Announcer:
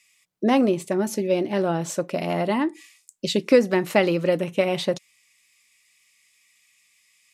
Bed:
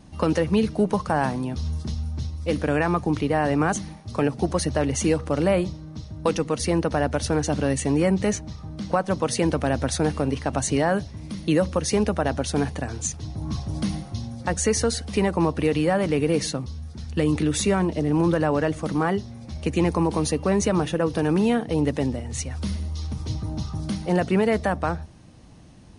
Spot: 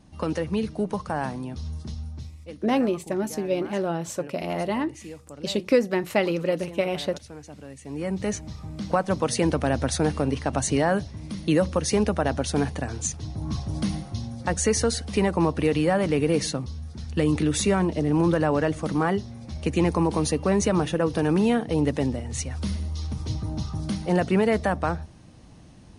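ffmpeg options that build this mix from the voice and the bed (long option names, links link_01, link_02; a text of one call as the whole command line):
ffmpeg -i stem1.wav -i stem2.wav -filter_complex "[0:a]adelay=2200,volume=-3.5dB[link_01];[1:a]volume=13dB,afade=type=out:start_time=2.04:duration=0.53:silence=0.211349,afade=type=in:start_time=7.82:duration=0.77:silence=0.11885[link_02];[link_01][link_02]amix=inputs=2:normalize=0" out.wav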